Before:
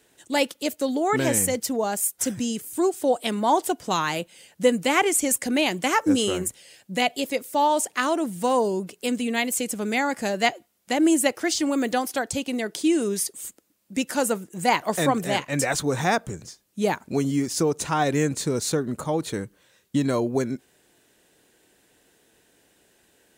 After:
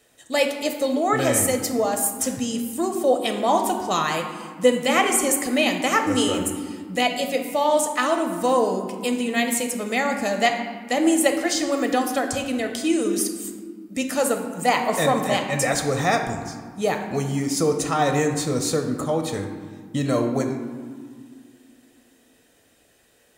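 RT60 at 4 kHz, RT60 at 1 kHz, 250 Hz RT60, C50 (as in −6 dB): 0.95 s, 1.8 s, 2.9 s, 7.0 dB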